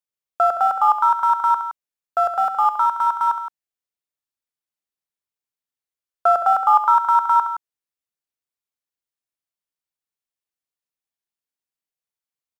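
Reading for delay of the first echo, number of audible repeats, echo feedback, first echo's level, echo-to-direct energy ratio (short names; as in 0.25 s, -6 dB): 67 ms, 2, no steady repeat, -10.5 dB, -8.0 dB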